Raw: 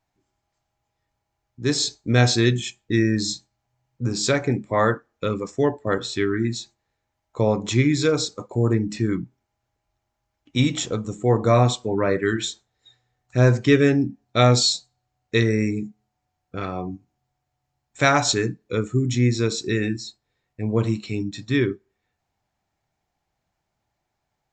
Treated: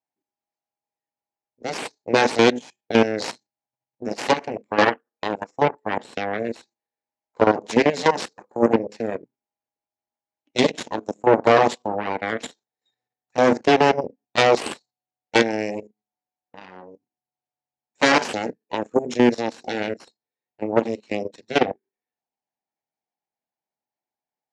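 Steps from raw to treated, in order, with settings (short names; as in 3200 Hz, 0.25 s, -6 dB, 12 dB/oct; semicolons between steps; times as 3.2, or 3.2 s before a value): level quantiser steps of 9 dB; added harmonics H 4 -6 dB, 7 -15 dB, 8 -17 dB, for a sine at -7 dBFS; speaker cabinet 240–6900 Hz, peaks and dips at 240 Hz +5 dB, 480 Hz +4 dB, 850 Hz +4 dB, 1300 Hz -5 dB, 3500 Hz -4 dB; Doppler distortion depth 0.17 ms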